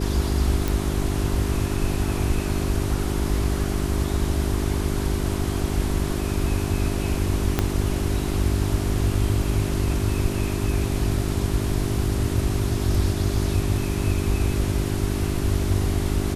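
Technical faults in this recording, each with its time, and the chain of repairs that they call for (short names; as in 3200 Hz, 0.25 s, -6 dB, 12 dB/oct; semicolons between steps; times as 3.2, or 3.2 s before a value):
hum 50 Hz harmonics 8 -27 dBFS
0.68 pop
7.59 pop -6 dBFS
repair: de-click; de-hum 50 Hz, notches 8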